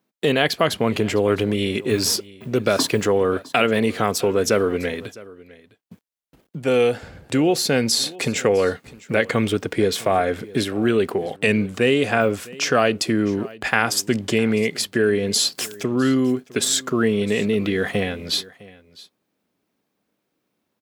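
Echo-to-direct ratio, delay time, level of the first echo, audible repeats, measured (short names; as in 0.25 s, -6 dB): -21.0 dB, 0.657 s, -21.0 dB, 1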